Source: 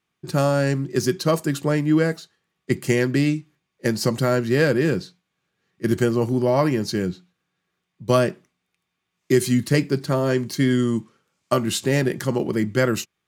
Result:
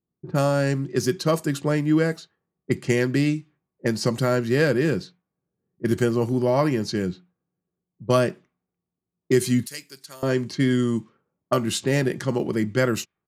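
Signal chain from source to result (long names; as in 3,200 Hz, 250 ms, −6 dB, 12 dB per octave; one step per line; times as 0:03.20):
downsampling to 32,000 Hz
low-pass that shuts in the quiet parts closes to 430 Hz, open at −19 dBFS
0:09.66–0:10.23: first-order pre-emphasis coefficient 0.97
level −1.5 dB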